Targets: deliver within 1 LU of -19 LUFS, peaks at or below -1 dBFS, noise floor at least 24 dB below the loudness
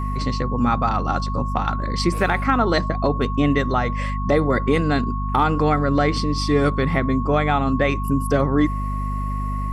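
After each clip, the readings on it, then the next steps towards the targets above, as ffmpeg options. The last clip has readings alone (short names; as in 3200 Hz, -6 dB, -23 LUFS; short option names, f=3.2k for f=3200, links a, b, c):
hum 50 Hz; harmonics up to 250 Hz; hum level -22 dBFS; steady tone 1100 Hz; tone level -29 dBFS; loudness -21.0 LUFS; peak -6.0 dBFS; loudness target -19.0 LUFS
-> -af "bandreject=f=50:t=h:w=6,bandreject=f=100:t=h:w=6,bandreject=f=150:t=h:w=6,bandreject=f=200:t=h:w=6,bandreject=f=250:t=h:w=6"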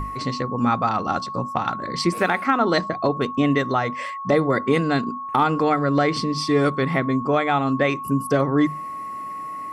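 hum none; steady tone 1100 Hz; tone level -29 dBFS
-> -af "bandreject=f=1.1k:w=30"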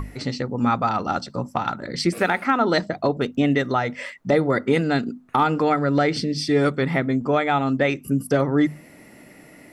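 steady tone none; loudness -22.0 LUFS; peak -7.5 dBFS; loudness target -19.0 LUFS
-> -af "volume=3dB"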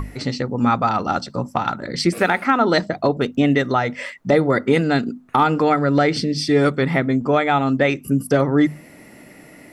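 loudness -19.0 LUFS; peak -4.5 dBFS; noise floor -45 dBFS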